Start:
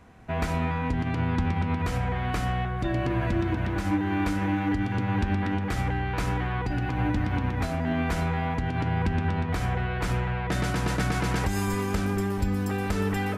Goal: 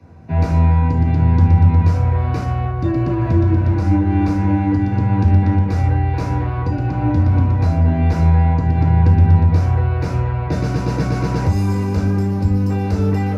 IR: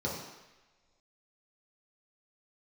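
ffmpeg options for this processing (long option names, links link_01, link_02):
-filter_complex "[0:a]acrossover=split=130|2500[link_01][link_02][link_03];[link_01]acontrast=87[link_04];[link_04][link_02][link_03]amix=inputs=3:normalize=0[link_05];[1:a]atrim=start_sample=2205,atrim=end_sample=3969,asetrate=48510,aresample=44100[link_06];[link_05][link_06]afir=irnorm=-1:irlink=0,volume=-2.5dB"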